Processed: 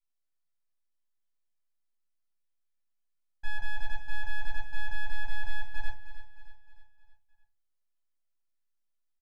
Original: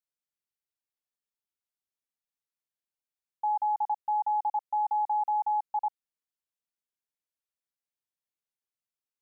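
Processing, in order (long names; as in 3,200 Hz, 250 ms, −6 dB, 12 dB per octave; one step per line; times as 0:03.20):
one-sided soft clipper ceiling −24.5 dBFS
parametric band 970 Hz −12.5 dB 0.6 octaves
full-wave rectification
on a send: repeating echo 309 ms, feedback 48%, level −12 dB
on the sum: rectangular room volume 150 cubic metres, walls furnished, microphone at 3 metres
level −5.5 dB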